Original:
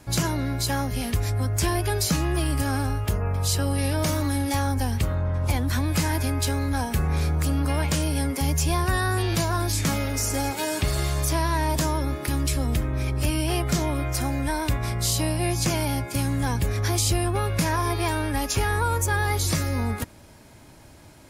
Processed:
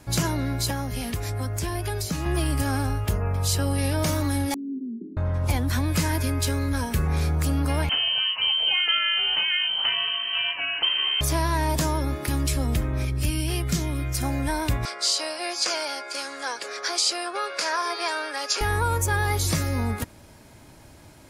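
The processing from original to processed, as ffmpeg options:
-filter_complex "[0:a]asettb=1/sr,asplit=3[a][b][c];[a]atrim=end=0.704[d];[b]atrim=start=0.7:end=2.26,asetpts=PTS-STARTPTS,afade=t=in:d=0.004:c=qsin,afade=t=out:st=1.556:d=0.004:c=qsin,acrossover=split=230|570[e][f][g];[e]acompressor=threshold=-28dB:ratio=4[h];[f]acompressor=threshold=-36dB:ratio=4[i];[g]acompressor=threshold=-32dB:ratio=4[j];[h][i][j]amix=inputs=3:normalize=0[k];[c]atrim=start=2.256[l];[d][k]acrossfade=d=0.004:c1=hsin:c2=qsin[m];[m][l]acrossfade=d=0.004:c1=qsin:c2=hsin,asettb=1/sr,asplit=3[n][o][p];[n]atrim=end=4.544[q];[o]atrim=start=4.54:end=5.17,asetpts=PTS-STARTPTS,afade=t=in:d=0.004:c=qsin,afade=t=out:st=0.626:d=0.004:c=qsin,asuperpass=centerf=280:order=12:qfactor=1.4[r];[p]atrim=start=5.166[s];[q][r]acrossfade=d=0.004:c1=hsin:c2=qsin[t];[t][s]acrossfade=d=0.004:c1=qsin:c2=hsin,asettb=1/sr,asplit=3[u][v][w];[u]atrim=end=5.914[x];[v]atrim=start=5.91:end=7.06,asetpts=PTS-STARTPTS,afade=t=in:d=0.004:c=qsin,afade=t=out:st=1.146:d=0.004:c=qsin,asuperstop=centerf=770:order=4:qfactor=5[y];[w]atrim=start=7.056[z];[x][y]acrossfade=d=0.004:c1=hsin:c2=qsin[aa];[aa][z]acrossfade=d=0.004:c1=qsin:c2=hsin,asettb=1/sr,asplit=3[ab][ac][ad];[ab]atrim=end=7.894[ae];[ac]atrim=start=7.89:end=11.21,asetpts=PTS-STARTPTS,afade=t=in:d=0.004:c=qsin,afade=t=out:st=3.316:d=0.004:c=qsin,lowpass=f=2.7k:t=q:w=0.5098,lowpass=f=2.7k:t=q:w=0.6013,lowpass=f=2.7k:t=q:w=0.9,lowpass=f=2.7k:t=q:w=2.563,afreqshift=-3200[af];[ad]atrim=start=11.206[ag];[ae][af]acrossfade=d=0.004:c1=hsin:c2=qsin[ah];[ah][ag]acrossfade=d=0.004:c1=qsin:c2=hsin,asettb=1/sr,asplit=3[ai][aj][ak];[ai]atrim=end=13.054[al];[aj]atrim=start=13.05:end=14.23,asetpts=PTS-STARTPTS,afade=t=in:d=0.004:c=qsin,afade=t=out:st=1.176:d=0.004:c=qsin,equalizer=f=770:w=0.77:g=-10[am];[ak]atrim=start=14.226[an];[al][am]acrossfade=d=0.004:c1=hsin:c2=qsin[ao];[ao][an]acrossfade=d=0.004:c1=qsin:c2=hsin,asettb=1/sr,asplit=3[ap][aq][ar];[ap]atrim=end=14.854[as];[aq]atrim=start=14.85:end=18.61,asetpts=PTS-STARTPTS,afade=t=in:d=0.004:c=qsin,afade=t=out:st=3.756:d=0.004:c=qsin,highpass=f=450:w=0.5412,highpass=f=450:w=1.3066,equalizer=f=840:t=q:w=4:g=-4,equalizer=f=1.4k:t=q:w=4:g=7,equalizer=f=4.7k:t=q:w=4:g=9,lowpass=f=8.7k:w=0.5412,lowpass=f=8.7k:w=1.3066[at];[ar]atrim=start=18.606[au];[as][at]acrossfade=d=0.004:c1=hsin:c2=qsin[av];[av][au]acrossfade=d=0.004:c1=qsin:c2=hsin"

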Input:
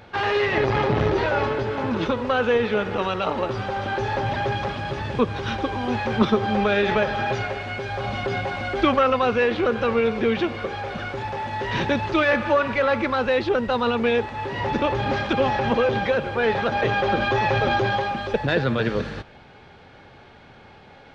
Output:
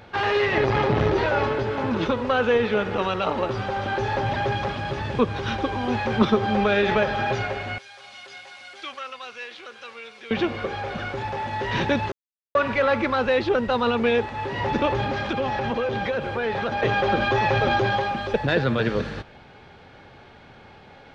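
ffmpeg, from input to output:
-filter_complex "[0:a]asettb=1/sr,asplit=3[a][b][c];[a]atrim=end=7.784[d];[b]atrim=start=7.78:end=10.31,asetpts=PTS-STARTPTS,afade=t=in:d=0.004:c=qsin,afade=t=out:st=2.526:d=0.004:c=qsin,aderivative[e];[c]atrim=start=10.306[f];[d][e]acrossfade=d=0.004:c1=hsin:c2=qsin[g];[g][f]acrossfade=d=0.004:c1=qsin:c2=hsin,asettb=1/sr,asplit=3[h][i][j];[h]atrim=end=15.054[k];[i]atrim=start=15.05:end=16.83,asetpts=PTS-STARTPTS,afade=t=in:d=0.004:c=qsin,afade=t=out:st=1.776:d=0.004:c=qsin,acompressor=threshold=-23dB:ratio=2.5:attack=3.2:release=140:knee=1:detection=peak[l];[j]atrim=start=16.826[m];[k][l]acrossfade=d=0.004:c1=hsin:c2=qsin[n];[n][m]acrossfade=d=0.004:c1=qsin:c2=hsin,asplit=3[o][p][q];[o]atrim=end=12.12,asetpts=PTS-STARTPTS,afade=t=out:st=12.116:d=0.004:c=hsin[r];[p]atrim=start=12.12:end=12.55,asetpts=PTS-STARTPTS,volume=0[s];[q]atrim=start=12.55,asetpts=PTS-STARTPTS,afade=t=in:d=0.004:c=hsin[t];[r][s][t]concat=n=3:v=0:a=1"

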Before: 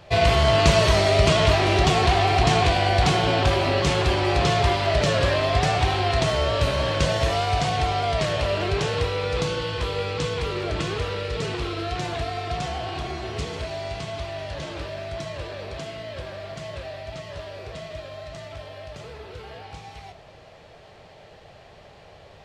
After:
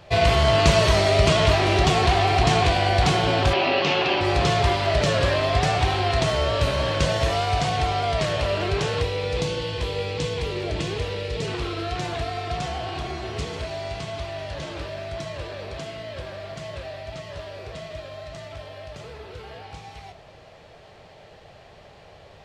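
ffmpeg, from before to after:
-filter_complex "[0:a]asettb=1/sr,asplit=3[a][b][c];[a]atrim=end=3.534[d];[b]atrim=start=3.53:end=4.21,asetpts=PTS-STARTPTS,afade=t=in:d=0.004:c=qsin,afade=t=out:st=0.676:d=0.004:c=qsin,highpass=f=160:w=0.5412,highpass=f=160:w=1.3066,equalizer=f=180:t=q:w=4:g=-4,equalizer=f=770:t=q:w=4:g=4,equalizer=f=2.7k:t=q:w=4:g=8,lowpass=f=5.2k:w=0.5412,lowpass=f=5.2k:w=1.3066[e];[c]atrim=start=4.206[f];[d][e]acrossfade=d=0.004:c1=hsin:c2=qsin[g];[g][f]acrossfade=d=0.004:c1=qsin:c2=hsin,asettb=1/sr,asplit=3[h][i][j];[h]atrim=end=9.024[k];[i]atrim=start=9.02:end=11.48,asetpts=PTS-STARTPTS,afade=t=in:d=0.004:c=qsin,afade=t=out:st=2.456:d=0.004:c=qsin,equalizer=f=1.3k:t=o:w=0.57:g=-9[l];[j]atrim=start=11.476[m];[k][l]acrossfade=d=0.004:c1=hsin:c2=qsin[n];[n][m]acrossfade=d=0.004:c1=qsin:c2=hsin"

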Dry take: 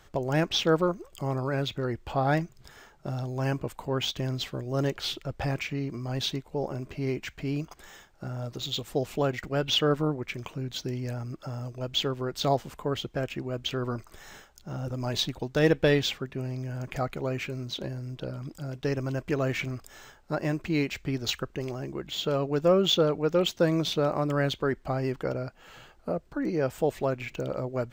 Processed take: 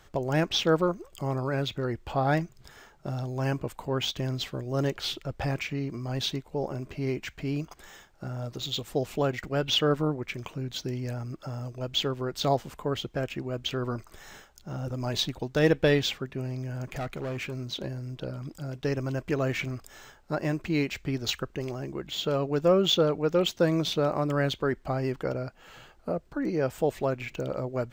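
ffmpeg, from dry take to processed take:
-filter_complex "[0:a]asettb=1/sr,asplit=3[a][b][c];[a]atrim=end=16.914[d];[b]atrim=start=16.91:end=17.57,asetpts=PTS-STARTPTS,afade=t=in:d=0.004:c=qsin,afade=t=out:st=0.656:d=0.004:c=qsin,asoftclip=type=hard:threshold=-29.5dB[e];[c]atrim=start=17.566[f];[d][e]acrossfade=d=0.004:c1=hsin:c2=qsin[g];[g][f]acrossfade=d=0.004:c1=qsin:c2=hsin"

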